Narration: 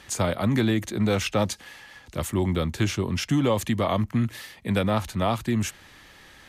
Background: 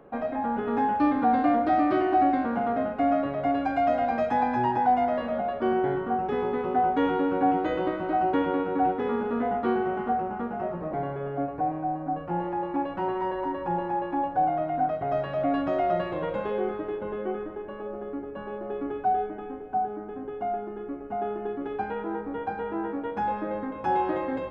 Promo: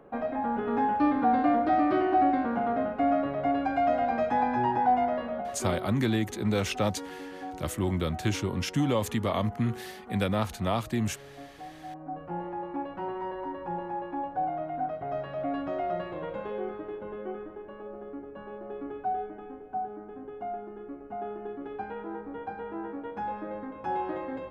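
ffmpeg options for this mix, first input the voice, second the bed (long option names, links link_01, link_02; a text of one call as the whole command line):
ffmpeg -i stem1.wav -i stem2.wav -filter_complex "[0:a]adelay=5450,volume=-4dB[link_01];[1:a]volume=9dB,afade=type=out:start_time=4.98:duration=0.94:silence=0.177828,afade=type=in:start_time=11.77:duration=0.48:silence=0.298538[link_02];[link_01][link_02]amix=inputs=2:normalize=0" out.wav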